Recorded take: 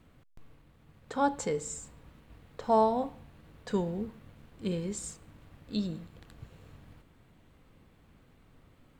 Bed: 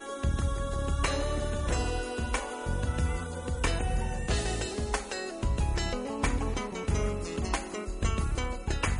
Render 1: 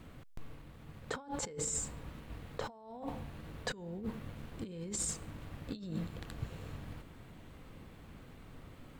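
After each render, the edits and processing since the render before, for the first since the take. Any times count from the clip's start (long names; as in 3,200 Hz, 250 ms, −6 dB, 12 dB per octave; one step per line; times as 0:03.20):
compressor whose output falls as the input rises −42 dBFS, ratio −1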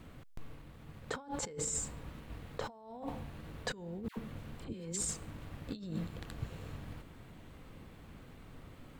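0:04.08–0:05.01: all-pass dispersion lows, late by 91 ms, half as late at 1,000 Hz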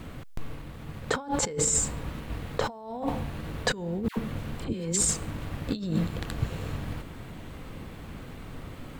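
level +11.5 dB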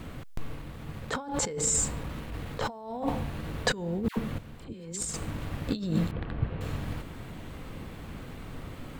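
0:01.04–0:02.73: transient designer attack −10 dB, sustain 0 dB
0:04.38–0:05.14: noise gate −23 dBFS, range −10 dB
0:06.11–0:06.61: high-frequency loss of the air 440 metres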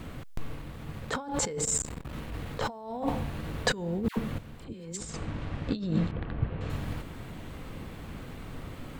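0:01.64–0:02.13: saturating transformer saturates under 580 Hz
0:04.97–0:06.70: high-frequency loss of the air 99 metres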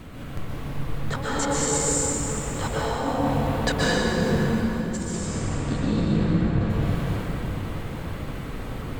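dense smooth reverb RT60 4 s, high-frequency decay 0.6×, pre-delay 110 ms, DRR −8 dB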